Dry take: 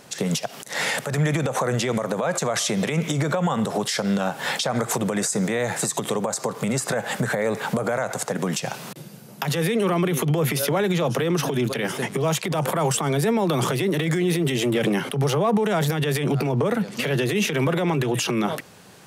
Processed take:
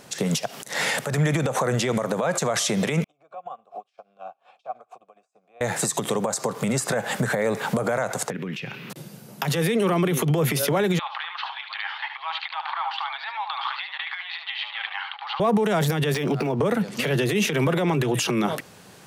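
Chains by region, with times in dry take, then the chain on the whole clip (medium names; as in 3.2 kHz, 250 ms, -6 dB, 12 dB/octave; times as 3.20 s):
3.04–5.61 s: vowel filter a + upward expansion 2.5:1, over -47 dBFS
8.30–8.90 s: FFT filter 410 Hz 0 dB, 670 Hz -15 dB, 2.5 kHz +5 dB, 8.5 kHz -26 dB, 14 kHz -12 dB + compression 2.5:1, threshold -29 dBFS
10.99–15.40 s: Chebyshev band-pass 800–4400 Hz, order 5 + delay 74 ms -8 dB
16.14–16.60 s: peaking EQ 110 Hz -9.5 dB 0.69 oct + decimation joined by straight lines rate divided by 3×
whole clip: none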